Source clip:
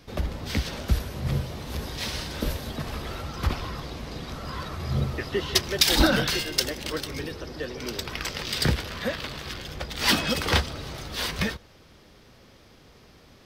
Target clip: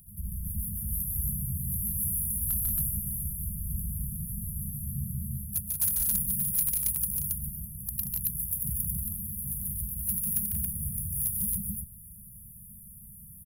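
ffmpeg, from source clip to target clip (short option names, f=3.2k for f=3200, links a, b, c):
-filter_complex "[0:a]asplit=2[a][b];[b]asetrate=58866,aresample=44100,atempo=0.749154,volume=-11dB[c];[a][c]amix=inputs=2:normalize=0,areverse,acompressor=threshold=-33dB:ratio=6,areverse,aexciter=amount=7.7:drive=3.9:freq=2.4k,afftfilt=real='re*(1-between(b*sr/4096,220,9600))':imag='im*(1-between(b*sr/4096,220,9600))':win_size=4096:overlap=0.75,volume=20.5dB,asoftclip=hard,volume=-20.5dB,asplit=2[d][e];[e]aecho=0:1:145.8|180.8|274.1:0.708|0.501|0.891[f];[d][f]amix=inputs=2:normalize=0"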